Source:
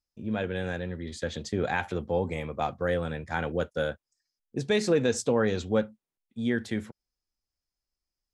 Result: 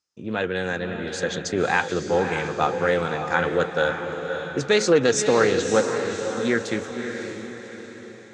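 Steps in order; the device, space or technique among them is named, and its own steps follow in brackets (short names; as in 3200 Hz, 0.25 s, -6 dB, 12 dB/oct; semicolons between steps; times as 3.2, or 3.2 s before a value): full-range speaker at full volume (Doppler distortion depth 0.13 ms; speaker cabinet 160–8600 Hz, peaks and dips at 220 Hz -7 dB, 630 Hz -5 dB, 1300 Hz +5 dB, 6400 Hz +5 dB); diffused feedback echo 0.575 s, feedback 47%, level -6.5 dB; gain +7.5 dB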